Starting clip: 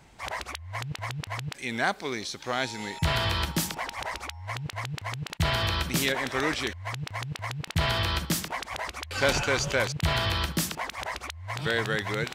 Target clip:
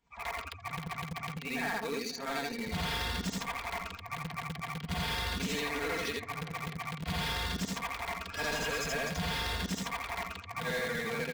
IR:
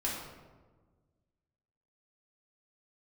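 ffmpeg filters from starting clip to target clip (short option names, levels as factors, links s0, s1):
-filter_complex "[0:a]afftfilt=real='re':imag='-im':win_size=8192:overlap=0.75,afftdn=nr=19:nf=-43,aecho=1:1:4.7:0.76,acompressor=threshold=0.0251:ratio=3,aresample=16000,asoftclip=type=tanh:threshold=0.0237,aresample=44100,asetrate=48000,aresample=44100,asplit=2[s0][s1];[s1]adelay=553.9,volume=0.224,highshelf=f=4000:g=-12.5[s2];[s0][s2]amix=inputs=2:normalize=0,asplit=2[s3][s4];[s4]acrusher=bits=5:mix=0:aa=0.000001,volume=0.473[s5];[s3][s5]amix=inputs=2:normalize=0"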